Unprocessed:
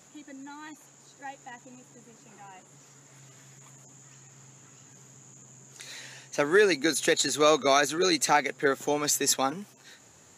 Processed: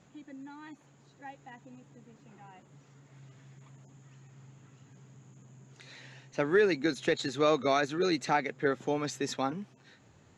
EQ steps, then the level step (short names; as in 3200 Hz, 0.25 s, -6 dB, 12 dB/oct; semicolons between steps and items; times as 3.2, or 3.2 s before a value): LPF 3900 Hz 12 dB/oct; low shelf 240 Hz +11 dB; -6.0 dB